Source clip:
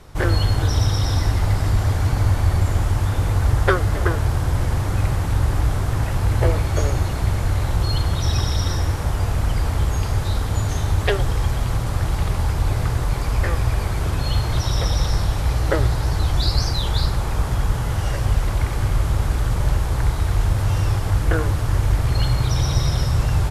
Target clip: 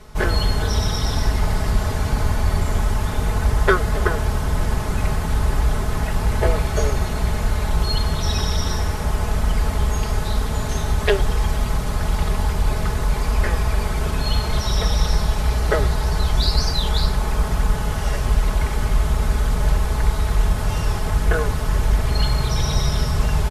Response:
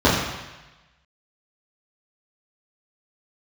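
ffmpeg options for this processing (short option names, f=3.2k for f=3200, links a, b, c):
-af "aecho=1:1:4.7:0.69"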